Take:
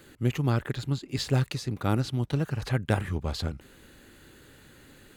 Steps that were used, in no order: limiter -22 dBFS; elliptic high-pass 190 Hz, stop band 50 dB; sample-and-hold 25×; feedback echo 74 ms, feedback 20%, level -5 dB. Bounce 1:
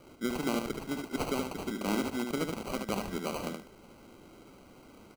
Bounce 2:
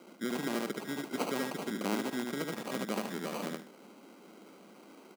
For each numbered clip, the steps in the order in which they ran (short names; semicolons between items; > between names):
elliptic high-pass > sample-and-hold > limiter > feedback echo; sample-and-hold > feedback echo > limiter > elliptic high-pass